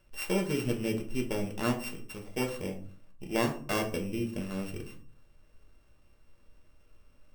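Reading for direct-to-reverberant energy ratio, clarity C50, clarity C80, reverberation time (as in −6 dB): 1.0 dB, 10.5 dB, 15.5 dB, 0.45 s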